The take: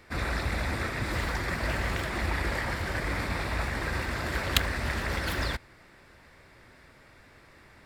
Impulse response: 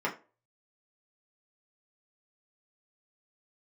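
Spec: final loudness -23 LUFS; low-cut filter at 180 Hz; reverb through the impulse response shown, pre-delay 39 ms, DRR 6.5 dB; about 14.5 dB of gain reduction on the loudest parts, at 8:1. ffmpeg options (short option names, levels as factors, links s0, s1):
-filter_complex "[0:a]highpass=180,acompressor=threshold=0.0141:ratio=8,asplit=2[s0][s1];[1:a]atrim=start_sample=2205,adelay=39[s2];[s1][s2]afir=irnorm=-1:irlink=0,volume=0.168[s3];[s0][s3]amix=inputs=2:normalize=0,volume=6.31"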